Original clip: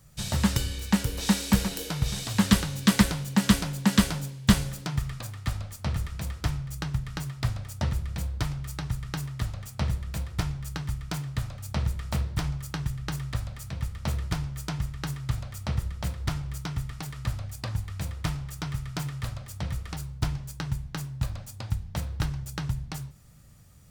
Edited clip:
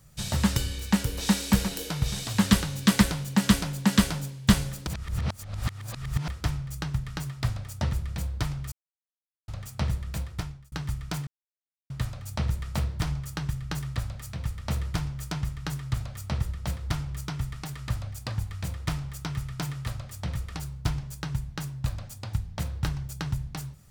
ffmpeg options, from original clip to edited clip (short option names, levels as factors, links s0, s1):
-filter_complex "[0:a]asplit=7[s0][s1][s2][s3][s4][s5][s6];[s0]atrim=end=4.872[s7];[s1]atrim=start=4.868:end=6.282,asetpts=PTS-STARTPTS,areverse[s8];[s2]atrim=start=6.278:end=8.72,asetpts=PTS-STARTPTS,afade=t=out:st=2.438:d=0.004:c=hsin[s9];[s3]atrim=start=8.72:end=9.48,asetpts=PTS-STARTPTS,volume=0[s10];[s4]atrim=start=9.48:end=10.72,asetpts=PTS-STARTPTS,afade=t=in:d=0.004:c=hsin,afade=t=out:st=0.71:d=0.53[s11];[s5]atrim=start=10.72:end=11.27,asetpts=PTS-STARTPTS,afade=t=in:d=0.004:c=hsin,afade=t=out:st=0.546:d=0.004:c=hsin,apad=pad_dur=0.63[s12];[s6]atrim=start=11.27,asetpts=PTS-STARTPTS,afade=t=in:d=0.004:c=hsin[s13];[s7][s8]acrossfade=d=0.004:c1=hsin:c2=hsin[s14];[s9][s10][s11][s12][s13]concat=n=5:v=0:a=1[s15];[s14][s15]acrossfade=d=0.004:c1=hsin:c2=hsin"